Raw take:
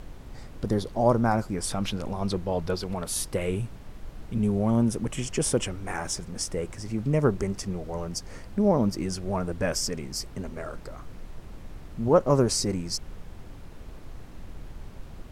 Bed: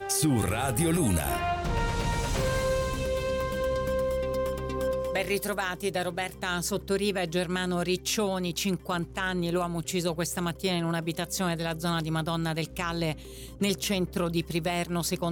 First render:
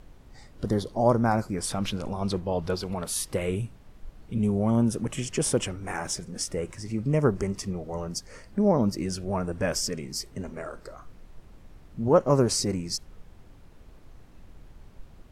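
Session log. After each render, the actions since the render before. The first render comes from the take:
noise reduction from a noise print 8 dB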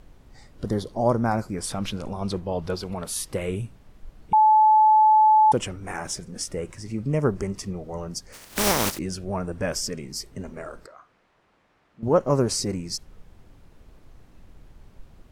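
0:04.33–0:05.52: beep over 864 Hz −12.5 dBFS
0:08.32–0:08.97: compressing power law on the bin magnitudes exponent 0.27
0:10.86–0:12.03: resonant band-pass 1,500 Hz, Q 0.65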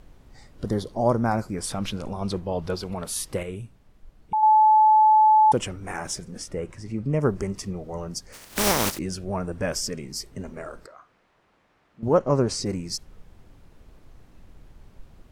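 0:03.43–0:04.43: clip gain −6 dB
0:06.38–0:07.21: high-shelf EQ 4,200 Hz −8.5 dB
0:12.19–0:12.66: high-frequency loss of the air 56 metres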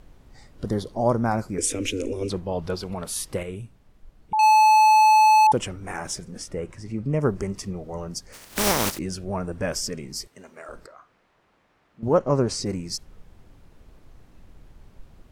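0:01.58–0:02.30: drawn EQ curve 100 Hz 0 dB, 180 Hz −21 dB, 260 Hz +12 dB, 500 Hz +10 dB, 720 Hz −16 dB, 1,200 Hz −12 dB, 2,400 Hz +10 dB, 4,500 Hz −5 dB, 6,600 Hz +12 dB, 15,000 Hz −1 dB
0:04.39–0:05.47: mid-hump overdrive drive 28 dB, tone 4,200 Hz, clips at −12 dBFS
0:10.27–0:10.69: high-pass filter 1,000 Hz 6 dB per octave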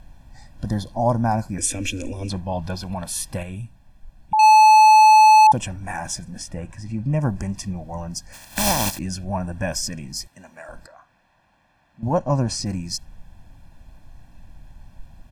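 dynamic equaliser 1,600 Hz, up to −5 dB, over −34 dBFS, Q 1.4
comb filter 1.2 ms, depth 89%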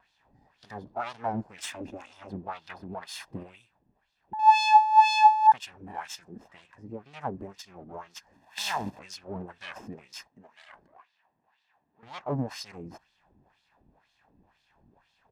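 lower of the sound and its delayed copy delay 1.1 ms
LFO wah 2 Hz 260–3,900 Hz, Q 2.2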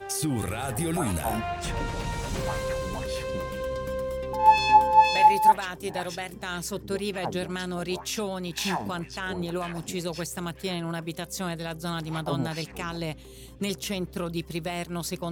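mix in bed −3 dB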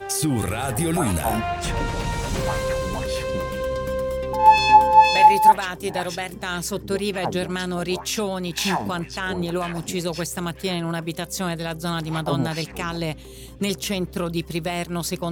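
level +5.5 dB
brickwall limiter −3 dBFS, peak gain reduction 1.5 dB

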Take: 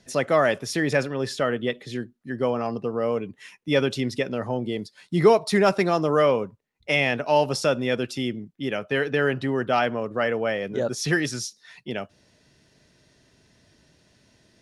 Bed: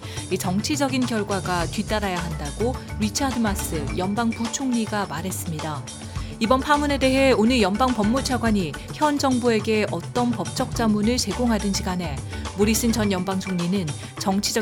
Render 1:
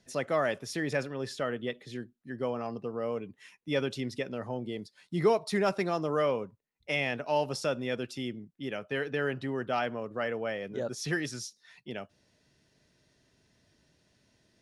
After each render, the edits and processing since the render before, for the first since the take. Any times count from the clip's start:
level −8.5 dB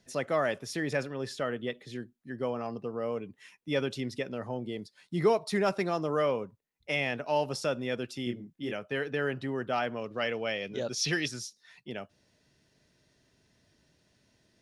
0:08.24–0:08.73: double-tracking delay 25 ms −3 dB
0:09.96–0:11.28: flat-topped bell 3,700 Hz +9.5 dB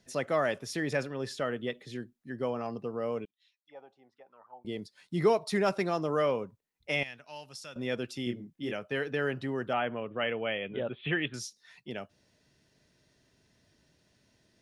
0:03.25–0:04.65: envelope filter 780–4,800 Hz, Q 11, down, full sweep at −30 dBFS
0:07.03–0:07.76: guitar amp tone stack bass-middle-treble 5-5-5
0:09.73–0:11.34: Butterworth low-pass 3,400 Hz 96 dB per octave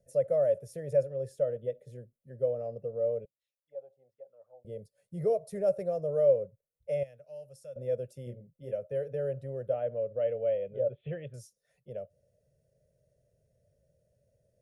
drawn EQ curve 140 Hz 0 dB, 310 Hz −22 dB, 550 Hz +10 dB, 930 Hz −26 dB, 1,400 Hz −21 dB, 2,400 Hz −22 dB, 4,000 Hz −26 dB, 9,900 Hz −5 dB

